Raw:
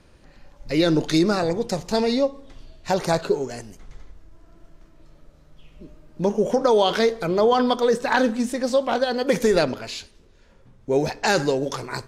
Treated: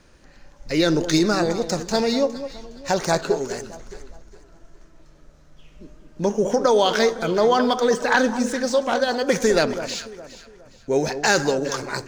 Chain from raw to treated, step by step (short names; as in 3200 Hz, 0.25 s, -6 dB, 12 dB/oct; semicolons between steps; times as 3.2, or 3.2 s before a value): median filter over 3 samples; fifteen-band EQ 100 Hz -5 dB, 1600 Hz +4 dB, 6300 Hz +8 dB; echo with dull and thin repeats by turns 0.206 s, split 1200 Hz, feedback 57%, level -10.5 dB